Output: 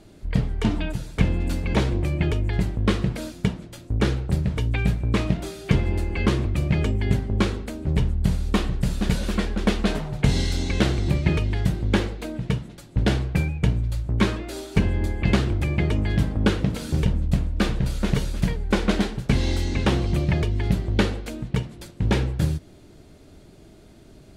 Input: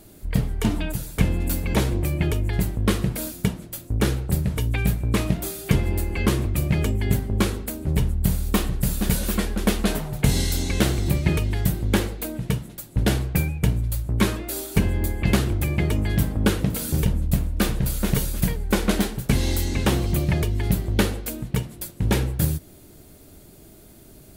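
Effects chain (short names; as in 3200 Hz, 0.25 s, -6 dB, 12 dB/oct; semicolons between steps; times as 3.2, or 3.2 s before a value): LPF 5200 Hz 12 dB/oct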